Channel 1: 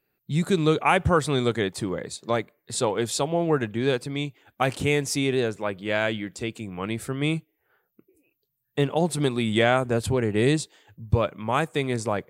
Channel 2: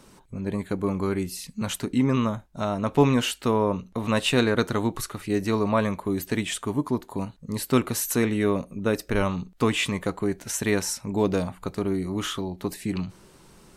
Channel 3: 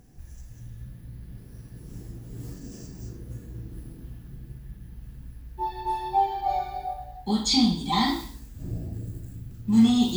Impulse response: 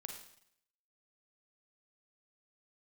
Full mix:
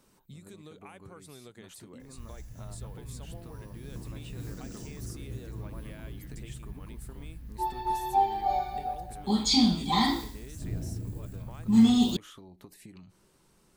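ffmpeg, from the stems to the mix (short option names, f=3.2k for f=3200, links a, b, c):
-filter_complex "[0:a]highshelf=f=6.5k:g=9.5,acompressor=threshold=-24dB:ratio=2,volume=-14dB[a];[1:a]acompressor=threshold=-26dB:ratio=6,volume=-13dB[b];[2:a]adelay=2000,volume=-1.5dB[c];[a][b]amix=inputs=2:normalize=0,highshelf=f=8.6k:g=5,acompressor=threshold=-46dB:ratio=6,volume=0dB[d];[c][d]amix=inputs=2:normalize=0"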